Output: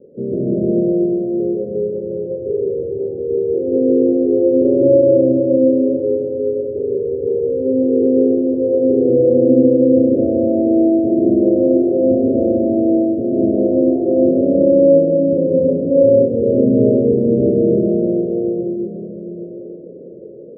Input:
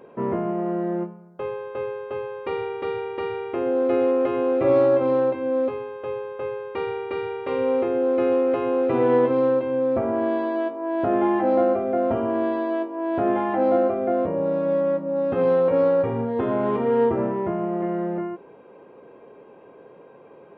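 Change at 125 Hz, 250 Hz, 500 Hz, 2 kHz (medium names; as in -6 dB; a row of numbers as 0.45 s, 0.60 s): +10.0 dB, +11.5 dB, +7.5 dB, under -40 dB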